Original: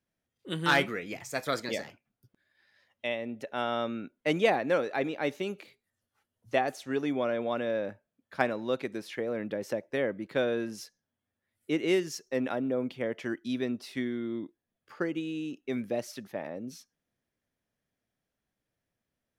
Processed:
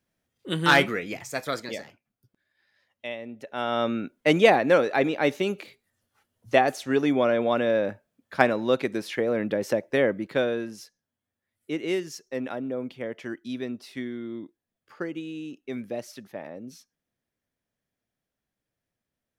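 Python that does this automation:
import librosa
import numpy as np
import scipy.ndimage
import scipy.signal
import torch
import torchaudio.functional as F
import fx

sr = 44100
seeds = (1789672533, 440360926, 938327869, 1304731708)

y = fx.gain(x, sr, db=fx.line((0.97, 6.0), (1.84, -2.0), (3.41, -2.0), (3.88, 7.5), (10.1, 7.5), (10.79, -1.0)))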